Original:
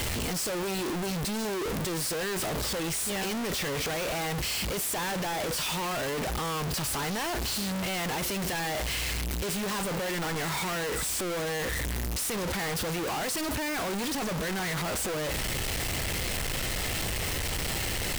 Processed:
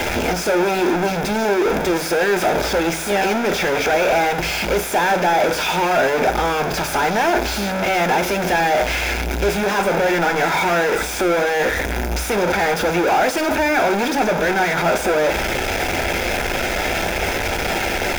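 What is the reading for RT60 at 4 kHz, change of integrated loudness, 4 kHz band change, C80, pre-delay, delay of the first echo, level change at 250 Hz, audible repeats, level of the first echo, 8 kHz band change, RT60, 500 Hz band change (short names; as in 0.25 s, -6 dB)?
0.70 s, +11.5 dB, +6.5 dB, 20.5 dB, 3 ms, none, +11.0 dB, none, none, +3.0 dB, 0.55 s, +15.5 dB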